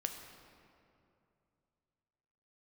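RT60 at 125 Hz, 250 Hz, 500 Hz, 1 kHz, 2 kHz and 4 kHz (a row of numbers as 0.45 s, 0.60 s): 3.4 s, 2.8 s, 2.8 s, 2.5 s, 2.0 s, 1.5 s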